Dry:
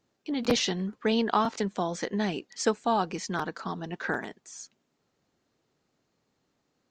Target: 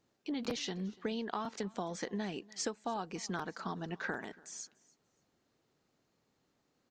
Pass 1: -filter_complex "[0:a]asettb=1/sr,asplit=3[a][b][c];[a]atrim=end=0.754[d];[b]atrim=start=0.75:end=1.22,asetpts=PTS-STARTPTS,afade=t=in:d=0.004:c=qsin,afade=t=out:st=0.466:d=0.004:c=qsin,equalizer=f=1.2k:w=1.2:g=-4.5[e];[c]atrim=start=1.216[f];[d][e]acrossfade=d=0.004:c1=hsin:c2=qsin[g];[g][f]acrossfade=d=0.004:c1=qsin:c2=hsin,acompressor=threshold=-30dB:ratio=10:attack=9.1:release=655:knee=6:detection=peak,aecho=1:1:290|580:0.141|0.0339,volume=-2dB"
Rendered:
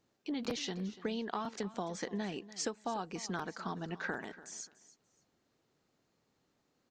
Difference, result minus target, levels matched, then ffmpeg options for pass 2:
echo-to-direct +6.5 dB
-filter_complex "[0:a]asettb=1/sr,asplit=3[a][b][c];[a]atrim=end=0.754[d];[b]atrim=start=0.75:end=1.22,asetpts=PTS-STARTPTS,afade=t=in:d=0.004:c=qsin,afade=t=out:st=0.466:d=0.004:c=qsin,equalizer=f=1.2k:w=1.2:g=-4.5[e];[c]atrim=start=1.216[f];[d][e]acrossfade=d=0.004:c1=hsin:c2=qsin[g];[g][f]acrossfade=d=0.004:c1=qsin:c2=hsin,acompressor=threshold=-30dB:ratio=10:attack=9.1:release=655:knee=6:detection=peak,aecho=1:1:290|580:0.0668|0.016,volume=-2dB"

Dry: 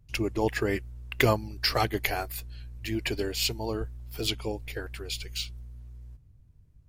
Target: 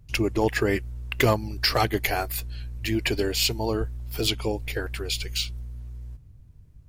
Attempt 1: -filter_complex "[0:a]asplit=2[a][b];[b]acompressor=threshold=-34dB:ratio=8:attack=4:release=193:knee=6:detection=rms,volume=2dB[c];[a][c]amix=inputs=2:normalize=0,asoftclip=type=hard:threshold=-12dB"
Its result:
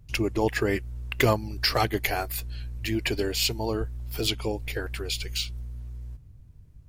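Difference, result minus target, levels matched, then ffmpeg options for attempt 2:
compressor: peak gain reduction +6 dB
-filter_complex "[0:a]asplit=2[a][b];[b]acompressor=threshold=-27dB:ratio=8:attack=4:release=193:knee=6:detection=rms,volume=2dB[c];[a][c]amix=inputs=2:normalize=0,asoftclip=type=hard:threshold=-12dB"

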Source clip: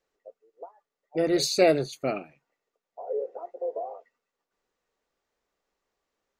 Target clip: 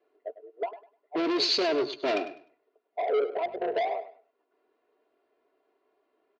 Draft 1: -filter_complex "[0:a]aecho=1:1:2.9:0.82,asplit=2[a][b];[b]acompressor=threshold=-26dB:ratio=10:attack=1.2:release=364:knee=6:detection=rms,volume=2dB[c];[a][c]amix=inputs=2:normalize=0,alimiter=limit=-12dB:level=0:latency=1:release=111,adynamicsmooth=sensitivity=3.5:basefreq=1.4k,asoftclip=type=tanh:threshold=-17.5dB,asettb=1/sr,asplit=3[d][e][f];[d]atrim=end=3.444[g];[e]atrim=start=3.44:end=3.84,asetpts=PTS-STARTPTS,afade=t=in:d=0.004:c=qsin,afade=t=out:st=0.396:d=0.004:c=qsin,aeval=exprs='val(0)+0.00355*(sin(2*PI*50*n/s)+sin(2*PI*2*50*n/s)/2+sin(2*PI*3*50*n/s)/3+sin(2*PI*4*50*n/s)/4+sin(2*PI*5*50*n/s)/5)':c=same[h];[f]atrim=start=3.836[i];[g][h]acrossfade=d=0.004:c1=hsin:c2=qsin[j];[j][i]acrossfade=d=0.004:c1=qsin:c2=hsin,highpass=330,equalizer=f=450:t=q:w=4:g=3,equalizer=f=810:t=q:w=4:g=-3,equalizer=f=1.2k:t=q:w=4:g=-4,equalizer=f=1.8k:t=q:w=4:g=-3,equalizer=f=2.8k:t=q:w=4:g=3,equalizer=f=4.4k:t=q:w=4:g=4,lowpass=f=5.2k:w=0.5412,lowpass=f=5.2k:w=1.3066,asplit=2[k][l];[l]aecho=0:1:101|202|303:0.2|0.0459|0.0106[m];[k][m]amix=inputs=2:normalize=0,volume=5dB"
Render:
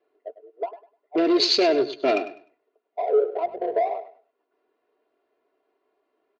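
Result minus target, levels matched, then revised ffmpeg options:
soft clip: distortion -9 dB
-filter_complex "[0:a]aecho=1:1:2.9:0.82,asplit=2[a][b];[b]acompressor=threshold=-26dB:ratio=10:attack=1.2:release=364:knee=6:detection=rms,volume=2dB[c];[a][c]amix=inputs=2:normalize=0,alimiter=limit=-12dB:level=0:latency=1:release=111,adynamicsmooth=sensitivity=3.5:basefreq=1.4k,asoftclip=type=tanh:threshold=-28dB,asettb=1/sr,asplit=3[d][e][f];[d]atrim=end=3.444[g];[e]atrim=start=3.44:end=3.84,asetpts=PTS-STARTPTS,afade=t=in:d=0.004:c=qsin,afade=t=out:st=0.396:d=0.004:c=qsin,aeval=exprs='val(0)+0.00355*(sin(2*PI*50*n/s)+sin(2*PI*2*50*n/s)/2+sin(2*PI*3*50*n/s)/3+sin(2*PI*4*50*n/s)/4+sin(2*PI*5*50*n/s)/5)':c=same[h];[f]atrim=start=3.836[i];[g][h]acrossfade=d=0.004:c1=hsin:c2=qsin[j];[j][i]acrossfade=d=0.004:c1=qsin:c2=hsin,highpass=330,equalizer=f=450:t=q:w=4:g=3,equalizer=f=810:t=q:w=4:g=-3,equalizer=f=1.2k:t=q:w=4:g=-4,equalizer=f=1.8k:t=q:w=4:g=-3,equalizer=f=2.8k:t=q:w=4:g=3,equalizer=f=4.4k:t=q:w=4:g=4,lowpass=f=5.2k:w=0.5412,lowpass=f=5.2k:w=1.3066,asplit=2[k][l];[l]aecho=0:1:101|202|303:0.2|0.0459|0.0106[m];[k][m]amix=inputs=2:normalize=0,volume=5dB"

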